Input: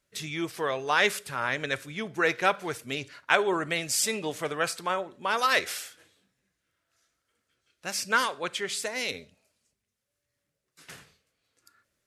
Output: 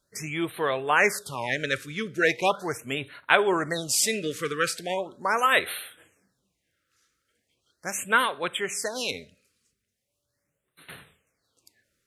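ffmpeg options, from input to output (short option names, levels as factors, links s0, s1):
-af "afftfilt=real='re*(1-between(b*sr/1024,740*pow(6200/740,0.5+0.5*sin(2*PI*0.39*pts/sr))/1.41,740*pow(6200/740,0.5+0.5*sin(2*PI*0.39*pts/sr))*1.41))':imag='im*(1-between(b*sr/1024,740*pow(6200/740,0.5+0.5*sin(2*PI*0.39*pts/sr))/1.41,740*pow(6200/740,0.5+0.5*sin(2*PI*0.39*pts/sr))*1.41))':win_size=1024:overlap=0.75,volume=1.41"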